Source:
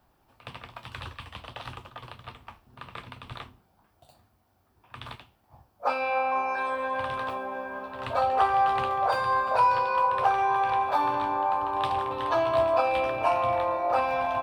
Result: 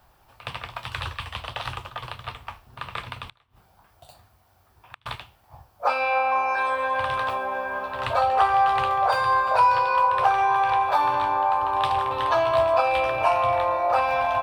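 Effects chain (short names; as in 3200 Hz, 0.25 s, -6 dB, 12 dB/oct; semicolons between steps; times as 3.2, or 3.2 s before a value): bell 260 Hz -10.5 dB 1.4 oct; in parallel at +1.5 dB: compressor, threshold -34 dBFS, peak gain reduction 14 dB; 3.24–5.06 on the sum: flipped gate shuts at -30 dBFS, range -31 dB; gain +2.5 dB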